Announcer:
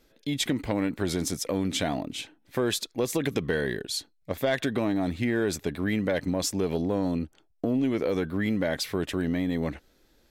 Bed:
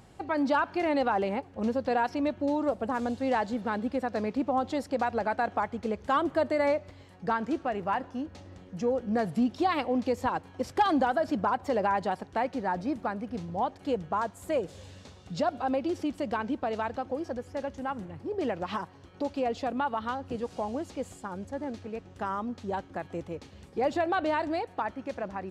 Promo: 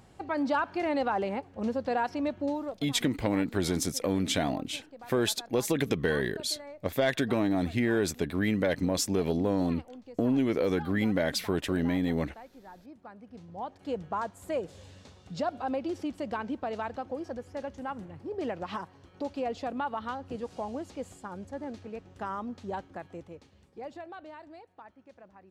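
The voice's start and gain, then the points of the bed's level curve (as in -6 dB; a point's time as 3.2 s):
2.55 s, -0.5 dB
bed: 2.48 s -2 dB
3.01 s -19.5 dB
12.84 s -19.5 dB
14 s -3 dB
22.77 s -3 dB
24.31 s -18.5 dB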